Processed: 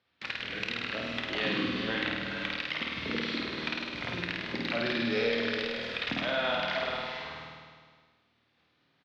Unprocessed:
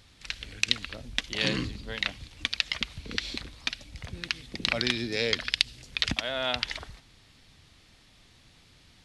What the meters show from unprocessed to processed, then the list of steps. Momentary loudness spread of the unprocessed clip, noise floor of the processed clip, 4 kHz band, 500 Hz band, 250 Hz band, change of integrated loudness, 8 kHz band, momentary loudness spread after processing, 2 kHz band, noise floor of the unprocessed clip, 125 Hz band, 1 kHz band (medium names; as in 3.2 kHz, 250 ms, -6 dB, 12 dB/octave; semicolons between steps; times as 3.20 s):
11 LU, -72 dBFS, -5.0 dB, +3.5 dB, +3.5 dB, -1.5 dB, -15.0 dB, 7 LU, +0.5 dB, -59 dBFS, -3.0 dB, +4.5 dB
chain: high-pass 210 Hz 12 dB/octave; gate -55 dBFS, range -33 dB; peaking EQ 1.4 kHz +2 dB; hum notches 50/100/150/200/250/300/350/400/450 Hz; in parallel at +2 dB: peak limiter -13.5 dBFS, peak gain reduction 11.5 dB; on the sum: compression 2:1, threshold -30 dBFS, peak gain reduction 9.5 dB; saturation -17 dBFS, distortion -12 dB; distance through air 270 m; doubling 26 ms -12 dB; on a send: flutter echo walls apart 8.8 m, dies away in 1.3 s; on the sum: gated-style reverb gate 490 ms rising, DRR 6.5 dB; three bands compressed up and down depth 40%